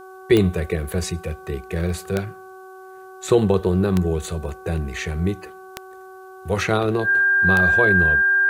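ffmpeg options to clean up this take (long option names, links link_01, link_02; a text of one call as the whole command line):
ffmpeg -i in.wav -af "adeclick=threshold=4,bandreject=frequency=377.2:width_type=h:width=4,bandreject=frequency=754.4:width_type=h:width=4,bandreject=frequency=1131.6:width_type=h:width=4,bandreject=frequency=1508.8:width_type=h:width=4,bandreject=frequency=1600:width=30,agate=range=-21dB:threshold=-33dB" out.wav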